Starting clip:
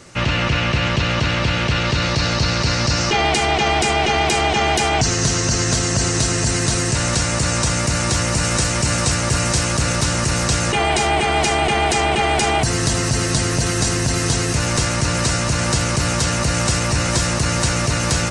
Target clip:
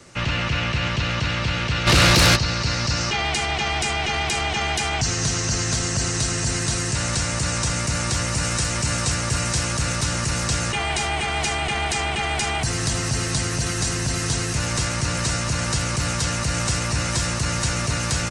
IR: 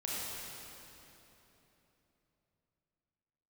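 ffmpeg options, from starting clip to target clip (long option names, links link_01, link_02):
-filter_complex "[0:a]acrossover=split=190|940|1600[link_01][link_02][link_03][link_04];[link_02]alimiter=limit=-22.5dB:level=0:latency=1:release=194[link_05];[link_01][link_05][link_03][link_04]amix=inputs=4:normalize=0,aecho=1:1:792|1584|2376:0.0891|0.0392|0.0173,asplit=3[link_06][link_07][link_08];[link_06]afade=type=out:start_time=1.86:duration=0.02[link_09];[link_07]aeval=exprs='0.447*sin(PI/2*3.16*val(0)/0.447)':channel_layout=same,afade=type=in:start_time=1.86:duration=0.02,afade=type=out:start_time=2.35:duration=0.02[link_10];[link_08]afade=type=in:start_time=2.35:duration=0.02[link_11];[link_09][link_10][link_11]amix=inputs=3:normalize=0,volume=-4dB"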